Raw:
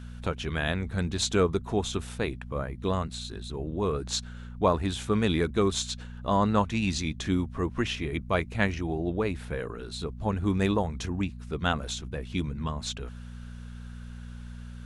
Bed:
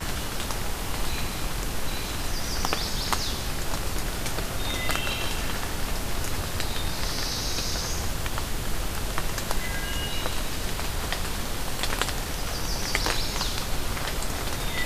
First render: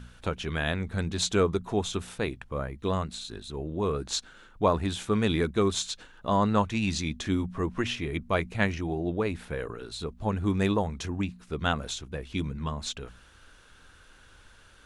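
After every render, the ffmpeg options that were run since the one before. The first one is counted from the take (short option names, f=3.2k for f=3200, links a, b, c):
-af "bandreject=f=60:t=h:w=4,bandreject=f=120:t=h:w=4,bandreject=f=180:t=h:w=4,bandreject=f=240:t=h:w=4"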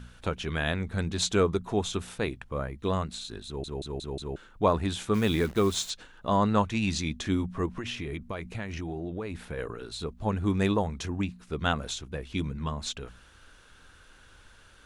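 -filter_complex "[0:a]asettb=1/sr,asplit=3[a][b][c];[a]atrim=end=5.144[d];[b]atrim=start=5.14:end=5.9,asetpts=PTS-STARTPTS,afade=t=in:d=0.004:c=qsin,afade=t=out:st=0.756:d=0.004:c=qsin,acrusher=bits=8:dc=4:mix=0:aa=0.000001[e];[c]atrim=start=5.896[f];[d][e]acrossfade=d=0.004:c1=hsin:c2=qsin[g];[g][f]acrossfade=d=0.004:c1=qsin:c2=hsin,asettb=1/sr,asplit=3[h][i][j];[h]atrim=end=7.664[k];[i]atrim=start=7.66:end=9.58,asetpts=PTS-STARTPTS,afade=t=in:d=0.004:c=qsin,afade=t=out:st=1.916:d=0.004:c=qsin,acompressor=threshold=-30dB:ratio=10:attack=3.2:release=140:knee=1:detection=peak[l];[j]atrim=start=9.576[m];[k][l]acrossfade=d=0.004:c1=hsin:c2=qsin[n];[n][m]acrossfade=d=0.004:c1=qsin:c2=hsin,asplit=6[o][p][q][r][s][t];[o]atrim=end=3.642[u];[p]atrim=start=3.458:end=3.642[v];[q]atrim=start=3.458:end=3.642[w];[r]atrim=start=3.458:end=3.642[x];[s]atrim=start=3.458:end=3.642[y];[t]atrim=start=4.358[z];[u][v]acrossfade=d=0.004:c1=hsin:c2=hsin[aa];[aa][w]acrossfade=d=0.004:c1=hsin:c2=hsin[ab];[ab][x]acrossfade=d=0.004:c1=hsin:c2=hsin[ac];[ac][y]acrossfade=d=0.004:c1=hsin:c2=hsin[ad];[ad][z]acrossfade=d=0.004:c1=hsin:c2=hsin"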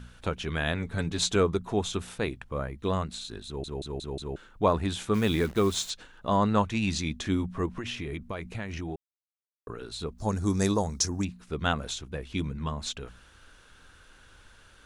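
-filter_complex "[0:a]asettb=1/sr,asplit=3[a][b][c];[a]atrim=end=0.754[d];[b]atrim=start=0.75:end=1.36,asetpts=PTS-STARTPTS,afade=t=in:d=0.004:c=qsin,afade=t=out:st=0.606:d=0.004:c=qsin,aecho=1:1:7.1:0.5,atrim=end_sample=26901[e];[c]atrim=start=1.356[f];[d][e]acrossfade=d=0.004:c1=hsin:c2=qsin[g];[g][f]acrossfade=d=0.004:c1=qsin:c2=hsin,asettb=1/sr,asplit=3[h][i][j];[h]atrim=end=10.184[k];[i]atrim=start=10.18:end=11.25,asetpts=PTS-STARTPTS,afade=t=in:d=0.004:c=qsin,afade=t=out:st=1.066:d=0.004:c=qsin,highshelf=f=4k:t=q:w=3:g=10.5[l];[j]atrim=start=11.246[m];[k][l]acrossfade=d=0.004:c1=hsin:c2=qsin[n];[n][m]acrossfade=d=0.004:c1=qsin:c2=hsin,asplit=3[o][p][q];[o]atrim=end=8.96,asetpts=PTS-STARTPTS,afade=t=out:st=8.956:d=0.004:c=hsin[r];[p]atrim=start=8.96:end=9.67,asetpts=PTS-STARTPTS,volume=0[s];[q]atrim=start=9.67,asetpts=PTS-STARTPTS,afade=t=in:d=0.004:c=hsin[t];[r][s][t]concat=n=3:v=0:a=1"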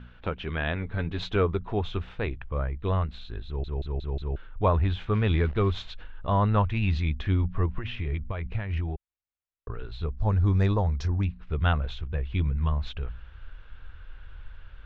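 -af "lowpass=f=3.2k:w=0.5412,lowpass=f=3.2k:w=1.3066,asubboost=boost=8:cutoff=81"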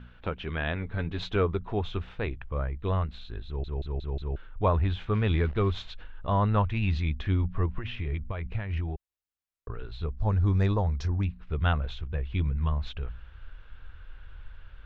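-af "volume=-1.5dB"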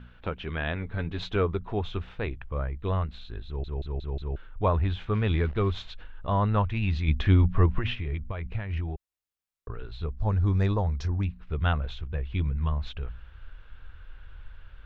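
-filter_complex "[0:a]asplit=3[a][b][c];[a]afade=t=out:st=7.07:d=0.02[d];[b]acontrast=67,afade=t=in:st=7.07:d=0.02,afade=t=out:st=7.93:d=0.02[e];[c]afade=t=in:st=7.93:d=0.02[f];[d][e][f]amix=inputs=3:normalize=0"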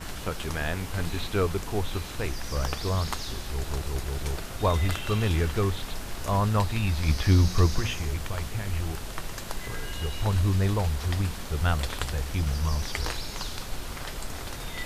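-filter_complex "[1:a]volume=-7dB[a];[0:a][a]amix=inputs=2:normalize=0"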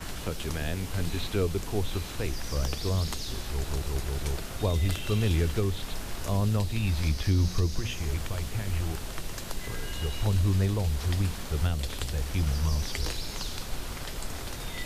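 -filter_complex "[0:a]acrossover=split=270|600|2300[a][b][c][d];[c]acompressor=threshold=-44dB:ratio=6[e];[a][b][e][d]amix=inputs=4:normalize=0,alimiter=limit=-16dB:level=0:latency=1:release=344"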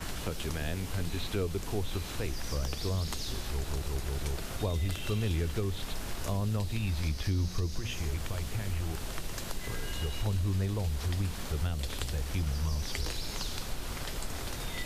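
-af "acompressor=threshold=-31dB:ratio=2"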